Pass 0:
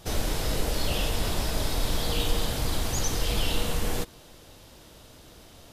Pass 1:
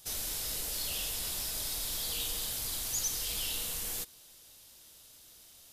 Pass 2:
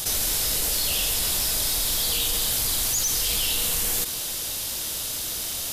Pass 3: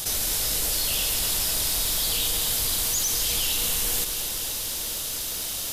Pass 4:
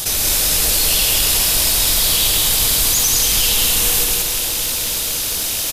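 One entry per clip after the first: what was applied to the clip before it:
pre-emphasis filter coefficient 0.9; trim +1 dB
in parallel at -1 dB: peak limiter -28.5 dBFS, peak gain reduction 7.5 dB; on the sum: hard clipper -22 dBFS, distortion -32 dB; level flattener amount 70%; trim +4 dB
bit-crushed delay 243 ms, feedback 80%, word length 8-bit, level -10.5 dB; trim -1.5 dB
rattle on loud lows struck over -42 dBFS, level -28 dBFS; on a send: loudspeakers at several distances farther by 39 m -9 dB, 62 m -3 dB; on the sum: trim +7.5 dB

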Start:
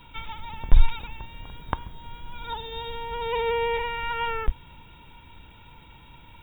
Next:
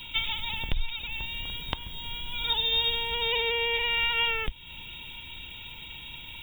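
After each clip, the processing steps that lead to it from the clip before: compression 2.5:1, threshold -30 dBFS, peak gain reduction 16 dB; resonant high shelf 2 kHz +13 dB, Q 1.5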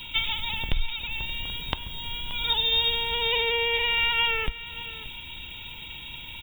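delay 578 ms -16.5 dB; on a send at -21.5 dB: reverberation RT60 1.1 s, pre-delay 6 ms; on the sum: trim +2.5 dB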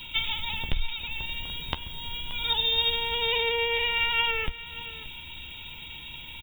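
doubling 13 ms -11 dB; trim -2 dB

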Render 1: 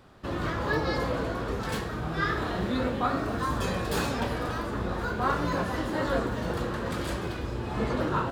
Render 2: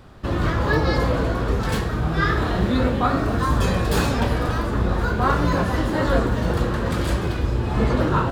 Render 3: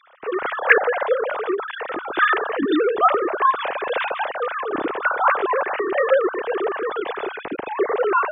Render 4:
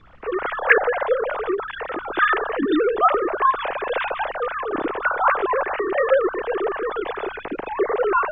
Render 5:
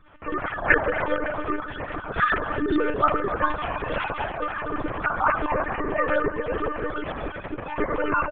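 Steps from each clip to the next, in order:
bass shelf 120 Hz +9.5 dB; trim +6 dB
formants replaced by sine waves; trim -1 dB
added noise brown -49 dBFS; distance through air 110 m
frequency-shifting echo 279 ms, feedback 51%, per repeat -45 Hz, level -13.5 dB; monotone LPC vocoder at 8 kHz 300 Hz; trim -3.5 dB

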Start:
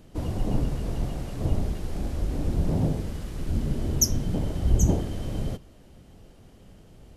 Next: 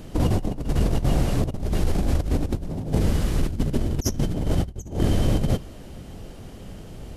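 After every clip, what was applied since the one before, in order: compressor with a negative ratio -29 dBFS, ratio -0.5; trim +7.5 dB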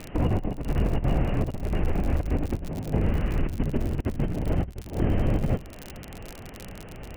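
Chebyshev low-pass 2.8 kHz, order 6; crackle 61 per s -31 dBFS; tape noise reduction on one side only encoder only; trim -2 dB

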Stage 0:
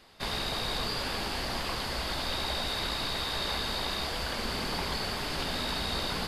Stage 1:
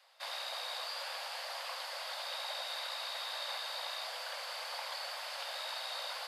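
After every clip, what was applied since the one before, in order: steep high-pass 510 Hz 96 dB/octave; trim -7 dB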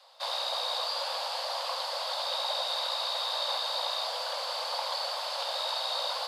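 graphic EQ 500/1000/2000/4000/8000 Hz +10/+9/-5/+10/+3 dB; crackle 12 per s -52 dBFS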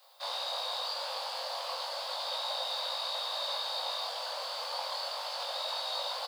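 added noise violet -63 dBFS; doubling 21 ms -2.5 dB; trim -5.5 dB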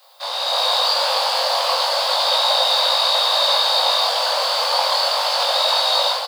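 level rider gain up to 9 dB; trim +9 dB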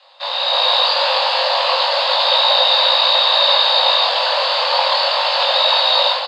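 cabinet simulation 420–5900 Hz, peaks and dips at 540 Hz +6 dB, 950 Hz +4 dB, 1.8 kHz +6 dB, 2.7 kHz +8 dB, 3.9 kHz +5 dB, 5.8 kHz -10 dB

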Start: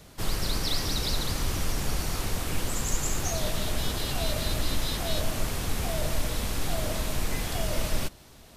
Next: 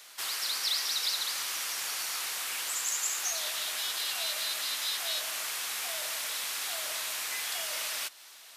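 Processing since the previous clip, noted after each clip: high-pass 1.4 kHz 12 dB/octave; in parallel at -1 dB: compression, threshold -43 dBFS, peak gain reduction 14.5 dB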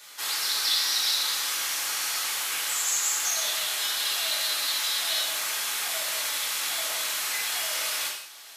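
gated-style reverb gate 240 ms falling, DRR -4 dB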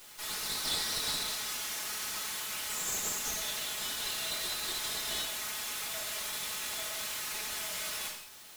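comb filter that takes the minimum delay 4.7 ms; word length cut 8-bit, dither triangular; trim -6.5 dB

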